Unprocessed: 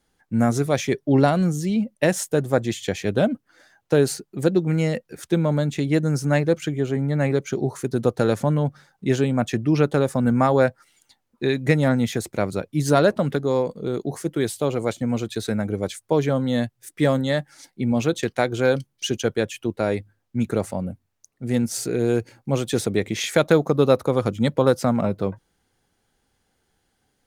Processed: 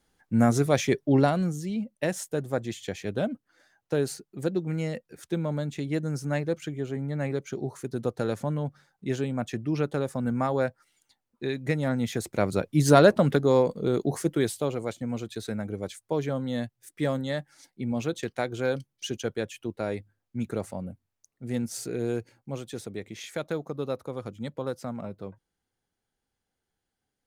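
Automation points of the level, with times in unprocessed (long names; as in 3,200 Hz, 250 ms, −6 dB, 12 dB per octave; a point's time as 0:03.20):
0:00.94 −1.5 dB
0:01.64 −8.5 dB
0:11.83 −8.5 dB
0:12.63 +0.5 dB
0:14.21 +0.5 dB
0:14.86 −8 dB
0:22.07 −8 dB
0:22.75 −14.5 dB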